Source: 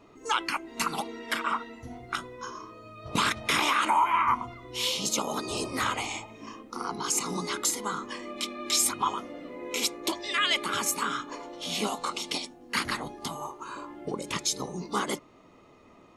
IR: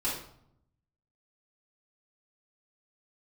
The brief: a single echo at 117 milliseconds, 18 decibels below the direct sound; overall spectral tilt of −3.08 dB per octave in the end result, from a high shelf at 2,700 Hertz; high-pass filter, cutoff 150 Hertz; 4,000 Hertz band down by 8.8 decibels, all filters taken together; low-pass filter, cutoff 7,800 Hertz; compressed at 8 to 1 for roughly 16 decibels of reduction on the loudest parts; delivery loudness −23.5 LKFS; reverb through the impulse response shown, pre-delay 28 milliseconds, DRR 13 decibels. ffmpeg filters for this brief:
-filter_complex "[0:a]highpass=150,lowpass=7800,highshelf=frequency=2700:gain=-5,equalizer=frequency=4000:width_type=o:gain=-7.5,acompressor=threshold=-38dB:ratio=8,aecho=1:1:117:0.126,asplit=2[link_01][link_02];[1:a]atrim=start_sample=2205,adelay=28[link_03];[link_02][link_03]afir=irnorm=-1:irlink=0,volume=-19.5dB[link_04];[link_01][link_04]amix=inputs=2:normalize=0,volume=18.5dB"

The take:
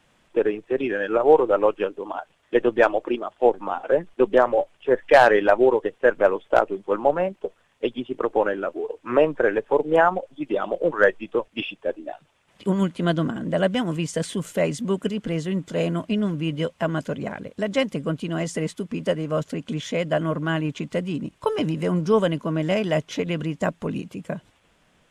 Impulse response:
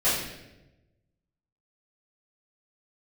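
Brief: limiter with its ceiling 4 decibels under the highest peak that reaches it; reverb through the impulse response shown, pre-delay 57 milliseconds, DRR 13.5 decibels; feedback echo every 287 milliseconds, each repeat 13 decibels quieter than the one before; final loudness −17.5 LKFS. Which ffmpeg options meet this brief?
-filter_complex "[0:a]alimiter=limit=-8dB:level=0:latency=1,aecho=1:1:287|574|861:0.224|0.0493|0.0108,asplit=2[link_01][link_02];[1:a]atrim=start_sample=2205,adelay=57[link_03];[link_02][link_03]afir=irnorm=-1:irlink=0,volume=-27.5dB[link_04];[link_01][link_04]amix=inputs=2:normalize=0,volume=6dB"

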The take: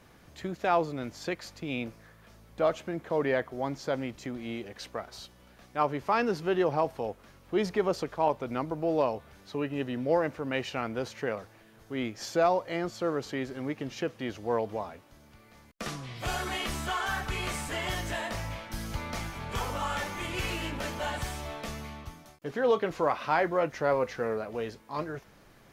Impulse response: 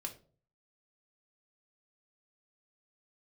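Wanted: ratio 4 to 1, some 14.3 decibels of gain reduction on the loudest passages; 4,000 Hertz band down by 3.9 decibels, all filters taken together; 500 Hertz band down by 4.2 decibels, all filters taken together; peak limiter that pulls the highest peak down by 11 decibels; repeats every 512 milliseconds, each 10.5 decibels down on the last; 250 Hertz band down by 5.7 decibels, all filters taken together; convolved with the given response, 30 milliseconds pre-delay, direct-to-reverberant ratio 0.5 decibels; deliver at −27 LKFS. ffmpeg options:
-filter_complex "[0:a]equalizer=frequency=250:width_type=o:gain=-6.5,equalizer=frequency=500:width_type=o:gain=-3.5,equalizer=frequency=4000:width_type=o:gain=-5.5,acompressor=threshold=-41dB:ratio=4,alimiter=level_in=14dB:limit=-24dB:level=0:latency=1,volume=-14dB,aecho=1:1:512|1024|1536:0.299|0.0896|0.0269,asplit=2[link_01][link_02];[1:a]atrim=start_sample=2205,adelay=30[link_03];[link_02][link_03]afir=irnorm=-1:irlink=0,volume=1.5dB[link_04];[link_01][link_04]amix=inputs=2:normalize=0,volume=18.5dB"

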